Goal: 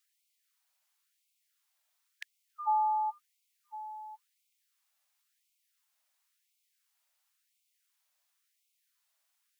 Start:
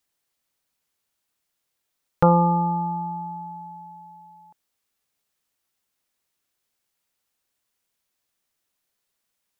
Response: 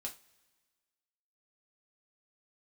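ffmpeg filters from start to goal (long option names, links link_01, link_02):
-af "afftfilt=real='re*gte(b*sr/1024,530*pow(2100/530,0.5+0.5*sin(2*PI*0.95*pts/sr)))':imag='im*gte(b*sr/1024,530*pow(2100/530,0.5+0.5*sin(2*PI*0.95*pts/sr)))':win_size=1024:overlap=0.75"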